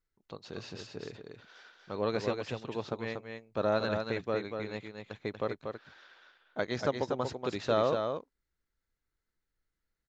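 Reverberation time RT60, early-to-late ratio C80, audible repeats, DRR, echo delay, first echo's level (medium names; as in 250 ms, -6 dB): no reverb, no reverb, 1, no reverb, 238 ms, -5.5 dB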